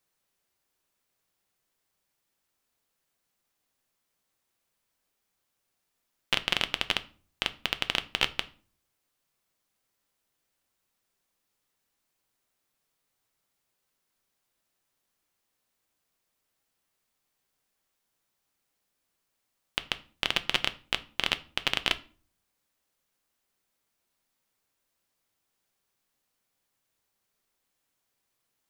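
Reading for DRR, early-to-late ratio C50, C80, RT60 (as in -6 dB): 11.0 dB, 19.0 dB, 24.0 dB, 0.40 s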